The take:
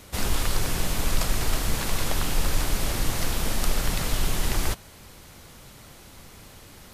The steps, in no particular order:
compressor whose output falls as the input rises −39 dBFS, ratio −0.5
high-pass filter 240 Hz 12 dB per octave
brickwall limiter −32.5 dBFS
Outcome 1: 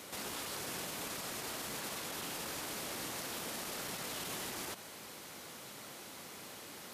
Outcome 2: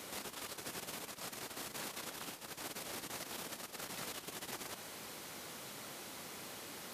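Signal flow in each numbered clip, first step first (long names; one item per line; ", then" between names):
high-pass filter, then brickwall limiter, then compressor whose output falls as the input rises
brickwall limiter, then compressor whose output falls as the input rises, then high-pass filter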